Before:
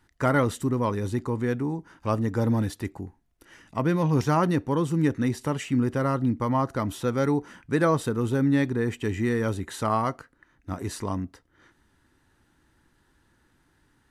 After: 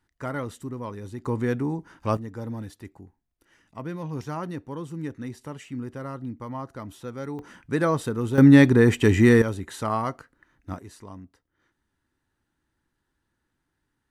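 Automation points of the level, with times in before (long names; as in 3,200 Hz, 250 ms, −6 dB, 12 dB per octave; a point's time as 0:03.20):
−9 dB
from 0:01.25 +1 dB
from 0:02.17 −10 dB
from 0:07.39 −1 dB
from 0:08.38 +9.5 dB
from 0:09.42 −1.5 dB
from 0:10.79 −12.5 dB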